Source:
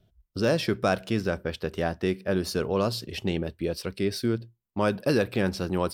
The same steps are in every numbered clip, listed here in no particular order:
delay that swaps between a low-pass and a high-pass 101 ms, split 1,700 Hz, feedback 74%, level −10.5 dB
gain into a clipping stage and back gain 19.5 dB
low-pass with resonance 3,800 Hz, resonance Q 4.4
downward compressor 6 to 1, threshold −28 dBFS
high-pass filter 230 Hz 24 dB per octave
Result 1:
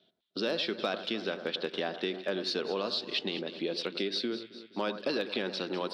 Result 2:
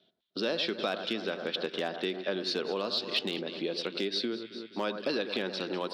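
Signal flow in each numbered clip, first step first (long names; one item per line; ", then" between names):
low-pass with resonance, then downward compressor, then high-pass filter, then gain into a clipping stage and back, then delay that swaps between a low-pass and a high-pass
delay that swaps between a low-pass and a high-pass, then downward compressor, then low-pass with resonance, then gain into a clipping stage and back, then high-pass filter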